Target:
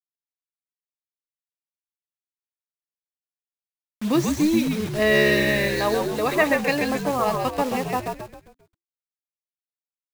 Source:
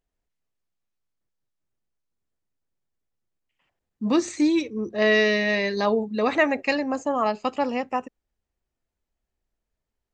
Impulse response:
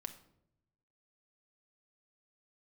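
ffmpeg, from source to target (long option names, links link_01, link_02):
-filter_complex "[0:a]asettb=1/sr,asplit=3[link_01][link_02][link_03];[link_01]atrim=end=5.754[link_04];[link_02]atrim=start=5.75:end=6.42,asetpts=PTS-STARTPTS,afade=type=in:duration=0.004:curve=qsin,afade=type=out:start_time=0.666:duration=0.004:curve=qsin,bass=frequency=250:gain=-10,treble=frequency=4000:gain=3[link_05];[link_03]atrim=start=6.416[link_06];[link_04][link_05]acrossfade=duration=0.004:curve1=hsin:curve2=qsin[link_07];[link_07][link_06]acrossfade=duration=0.004:curve1=qsin:curve2=hsin,acrusher=bits=5:mix=0:aa=0.000001,asplit=6[link_08][link_09][link_10][link_11][link_12][link_13];[link_09]adelay=133,afreqshift=-69,volume=-4dB[link_14];[link_10]adelay=266,afreqshift=-138,volume=-11.5dB[link_15];[link_11]adelay=399,afreqshift=-207,volume=-19.1dB[link_16];[link_12]adelay=532,afreqshift=-276,volume=-26.6dB[link_17];[link_13]adelay=665,afreqshift=-345,volume=-34.1dB[link_18];[link_08][link_14][link_15][link_16][link_17][link_18]amix=inputs=6:normalize=0"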